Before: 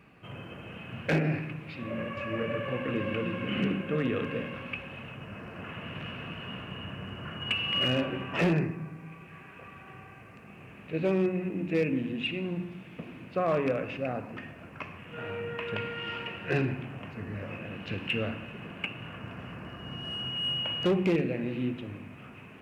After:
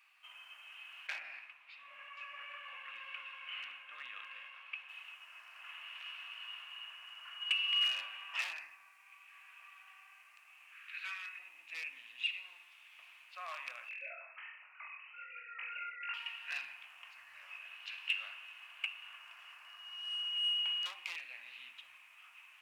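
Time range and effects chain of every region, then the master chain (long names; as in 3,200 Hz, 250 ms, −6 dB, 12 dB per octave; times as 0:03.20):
0:01.07–0:04.89: high-shelf EQ 4,100 Hz −10.5 dB + one half of a high-frequency compander decoder only
0:10.72–0:11.39: high-pass with resonance 1,500 Hz, resonance Q 3.3 + double-tracking delay 27 ms −12 dB
0:13.89–0:16.14: three sine waves on the formant tracks + reverse bouncing-ball delay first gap 20 ms, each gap 1.1×, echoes 7, each echo −2 dB
whole clip: inverse Chebyshev high-pass filter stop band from 450 Hz, stop band 50 dB; parametric band 1,500 Hz −11 dB 1.2 octaves; level +1 dB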